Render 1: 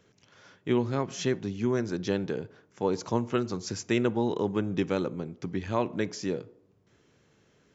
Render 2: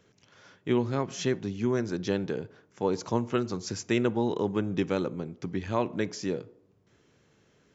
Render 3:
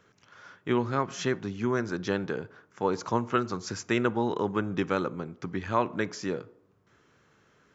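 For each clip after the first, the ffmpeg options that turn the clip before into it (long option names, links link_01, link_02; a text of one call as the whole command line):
ffmpeg -i in.wav -af anull out.wav
ffmpeg -i in.wav -af "equalizer=frequency=1300:width_type=o:width=1.1:gain=10,volume=-1.5dB" out.wav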